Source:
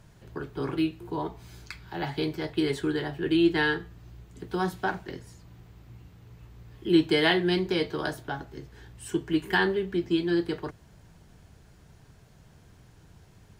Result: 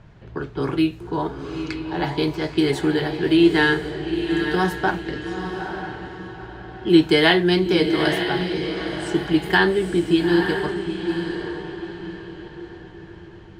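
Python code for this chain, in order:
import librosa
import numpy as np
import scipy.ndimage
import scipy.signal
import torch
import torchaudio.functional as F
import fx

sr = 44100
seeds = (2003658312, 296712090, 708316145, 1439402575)

y = fx.echo_diffused(x, sr, ms=891, feedback_pct=41, wet_db=-6.5)
y = fx.env_lowpass(y, sr, base_hz=2800.0, full_db=-25.0)
y = F.gain(torch.from_numpy(y), 7.0).numpy()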